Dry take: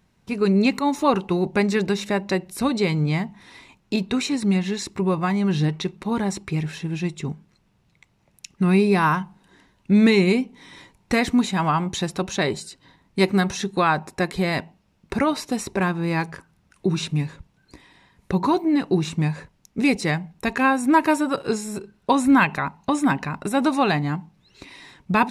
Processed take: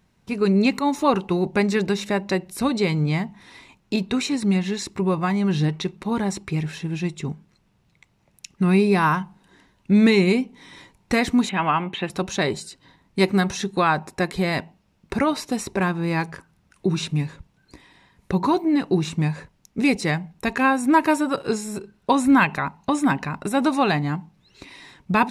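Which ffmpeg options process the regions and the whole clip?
-filter_complex "[0:a]asettb=1/sr,asplit=3[a][b][c];[a]atrim=end=11.494[d];[b]atrim=start=11.49:end=12.1,asetpts=PTS-STARTPTS,afade=t=in:d=0.004:c=qsin,afade=t=out:st=0.606:d=0.004:c=qsin,highpass=200,highshelf=f=3.9k:t=q:w=3:g=-11.5,acrossover=split=4700[e][f];[f]acompressor=threshold=-51dB:ratio=4:attack=1:release=60[g];[e][g]amix=inputs=2:normalize=0[h];[c]atrim=start=12.096[i];[d][h]acrossfade=d=0.004:c1=hsin:c2=qsin[j];[j][i]acrossfade=d=0.004:c1=qsin:c2=hsin"

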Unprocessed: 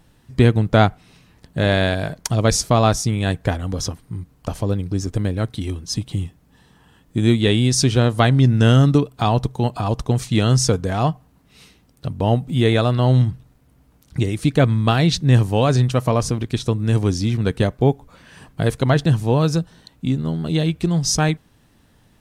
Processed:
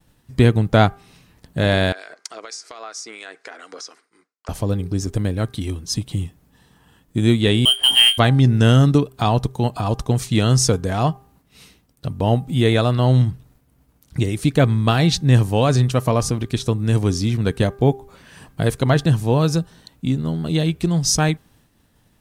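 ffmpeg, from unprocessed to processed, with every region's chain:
-filter_complex "[0:a]asettb=1/sr,asplit=3[a][b][c];[a]atrim=end=1.924[d];[b]atrim=start=1.92:end=4.49,asetpts=PTS-STARTPTS,afade=t=in:d=0.004:c=qsin,afade=t=out:st=2.566:d=0.004:c=qsin,highpass=f=410:w=0.5412,highpass=f=410:w=1.3066,equalizer=f=560:t=q:w=4:g=-6,equalizer=f=880:t=q:w=4:g=-5,equalizer=f=1.4k:t=q:w=4:g=7,equalizer=f=2.1k:t=q:w=4:g=6,equalizer=f=3.3k:t=q:w=4:g=-4,equalizer=f=4.9k:t=q:w=4:g=5,lowpass=f=8.3k:w=0.5412,lowpass=f=8.3k:w=1.3066,acompressor=threshold=-29dB:ratio=8:attack=3.2:release=140:knee=1:detection=peak,acrossover=split=2200[e][f];[e]aeval=exprs='val(0)*(1-0.5/2+0.5/2*cos(2*PI*4.3*n/s))':c=same[g];[f]aeval=exprs='val(0)*(1-0.5/2-0.5/2*cos(2*PI*4.3*n/s))':c=same[h];[g][h]amix=inputs=2:normalize=0[i];[c]atrim=start=4.486[j];[d][i]acrossfade=d=0.004:c1=hsin:c2=qsin[k];[k][j]acrossfade=d=0.004:c1=qsin:c2=hsin,asettb=1/sr,asplit=3[l][m][n];[l]atrim=end=7.654[o];[m]atrim=start=7.65:end=8.18,asetpts=PTS-STARTPTS,afade=t=in:d=0.004:c=qsin,afade=t=out:st=0.526:d=0.004:c=qsin,lowpass=f=2.8k:t=q:w=0.5098,lowpass=f=2.8k:t=q:w=0.6013,lowpass=f=2.8k:t=q:w=0.9,lowpass=f=2.8k:t=q:w=2.563,afreqshift=-3300,adynamicsmooth=sensitivity=5.5:basefreq=1.1k,asplit=2[p][q];[q]adelay=22,volume=-8dB[r];[p][r]amix=inputs=2:normalize=0,atrim=end_sample=23373[s];[n]atrim=start=8.176[t];[o][s]acrossfade=d=0.004:c1=hsin:c2=qsin[u];[u][t]acrossfade=d=0.004:c1=qsin:c2=hsin,highshelf=f=9.6k:g=7,bandreject=f=398.1:t=h:w=4,bandreject=f=796.2:t=h:w=4,bandreject=f=1.1943k:t=h:w=4,bandreject=f=1.5924k:t=h:w=4,agate=range=-33dB:threshold=-50dB:ratio=3:detection=peak"

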